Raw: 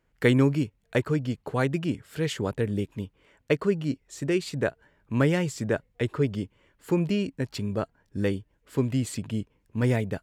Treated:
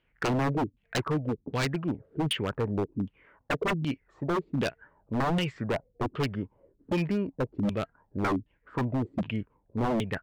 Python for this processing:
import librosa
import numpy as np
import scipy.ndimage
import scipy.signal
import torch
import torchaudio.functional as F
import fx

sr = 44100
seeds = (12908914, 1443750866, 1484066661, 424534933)

y = fx.filter_lfo_lowpass(x, sr, shape='saw_down', hz=1.3, low_hz=210.0, high_hz=3300.0, q=4.9)
y = 10.0 ** (-19.0 / 20.0) * (np.abs((y / 10.0 ** (-19.0 / 20.0) + 3.0) % 4.0 - 2.0) - 1.0)
y = y * 10.0 ** (-2.5 / 20.0)